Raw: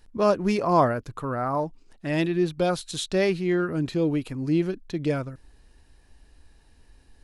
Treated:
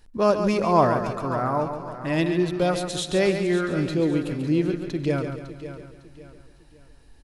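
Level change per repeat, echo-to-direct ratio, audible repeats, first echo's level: no regular repeats, -5.5 dB, 10, -8.0 dB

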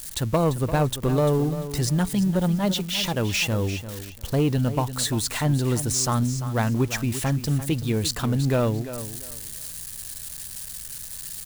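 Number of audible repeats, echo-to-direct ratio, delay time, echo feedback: 2, -12.0 dB, 344 ms, 23%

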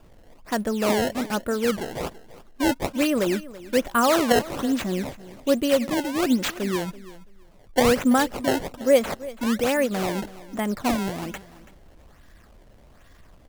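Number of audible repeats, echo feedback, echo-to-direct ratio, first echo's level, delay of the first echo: 2, 19%, -18.0 dB, -18.0 dB, 332 ms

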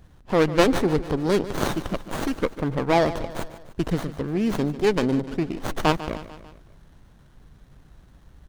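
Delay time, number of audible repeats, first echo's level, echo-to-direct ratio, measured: 148 ms, 4, -14.5 dB, -13.0 dB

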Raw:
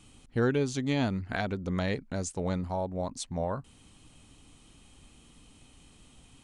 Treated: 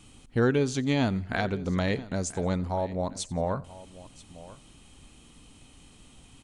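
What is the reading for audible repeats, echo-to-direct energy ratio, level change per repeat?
3, -16.5 dB, no regular repeats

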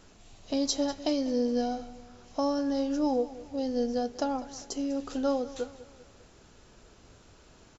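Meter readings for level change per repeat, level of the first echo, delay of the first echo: -6.5 dB, -17.5 dB, 198 ms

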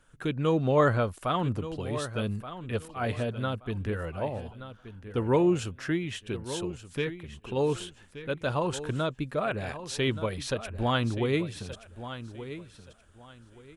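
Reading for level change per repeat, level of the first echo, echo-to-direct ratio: -12.5 dB, -12.5 dB, -12.0 dB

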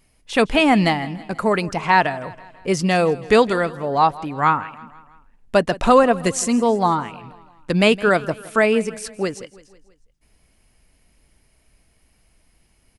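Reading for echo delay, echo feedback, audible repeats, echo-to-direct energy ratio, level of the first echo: 163 ms, 54%, 3, -18.0 dB, -19.5 dB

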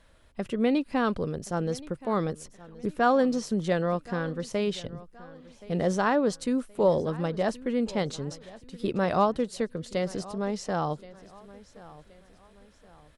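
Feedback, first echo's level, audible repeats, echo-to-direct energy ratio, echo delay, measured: 39%, -19.5 dB, 2, -19.0 dB, 1074 ms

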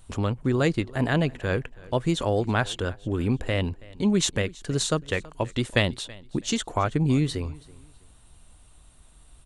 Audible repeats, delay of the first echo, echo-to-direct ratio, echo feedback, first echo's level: 2, 327 ms, -21.5 dB, 27%, -22.0 dB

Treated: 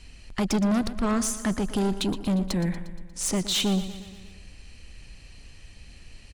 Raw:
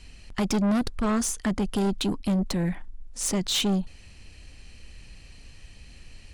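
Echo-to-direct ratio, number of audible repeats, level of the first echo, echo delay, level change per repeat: -11.5 dB, 5, -13.5 dB, 118 ms, -4.5 dB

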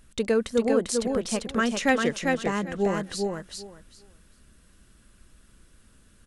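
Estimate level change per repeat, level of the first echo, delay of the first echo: -15.5 dB, -3.5 dB, 396 ms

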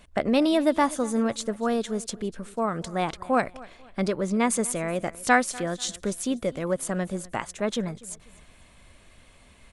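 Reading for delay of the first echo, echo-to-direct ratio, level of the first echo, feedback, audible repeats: 245 ms, -20.5 dB, -21.0 dB, 34%, 2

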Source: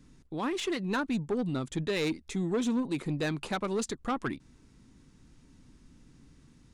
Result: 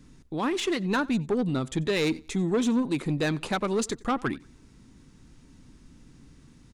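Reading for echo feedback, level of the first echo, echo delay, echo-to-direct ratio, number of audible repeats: 28%, -23.5 dB, 91 ms, -23.0 dB, 2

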